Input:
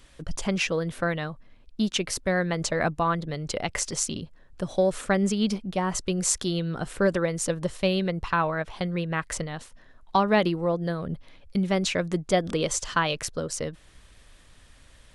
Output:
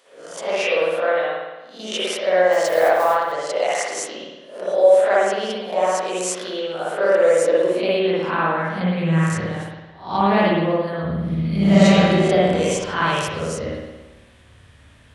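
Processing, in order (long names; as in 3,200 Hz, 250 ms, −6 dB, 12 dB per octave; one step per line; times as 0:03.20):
peak hold with a rise ahead of every peak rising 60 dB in 0.40 s
high-pass filter sweep 560 Hz → 83 Hz, 0:07.11–0:09.80
0:02.52–0:03.32: noise that follows the level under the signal 18 dB
0:11.10–0:11.84: thrown reverb, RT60 2.7 s, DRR −8.5 dB
spring reverb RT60 1.1 s, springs 55 ms, chirp 70 ms, DRR −6.5 dB
level −3.5 dB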